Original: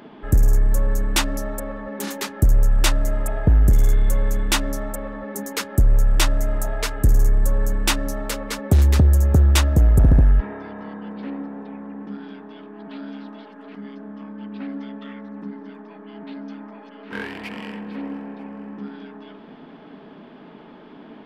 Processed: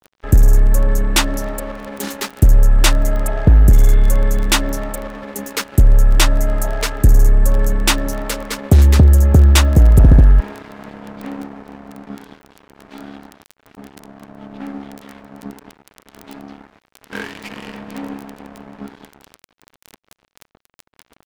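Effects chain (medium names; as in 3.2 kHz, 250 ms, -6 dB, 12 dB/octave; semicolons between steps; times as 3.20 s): 13.18–15.13 s: treble shelf 3.6 kHz -8.5 dB; crackle 14 per s -25 dBFS; crossover distortion -36 dBFS; trim +6 dB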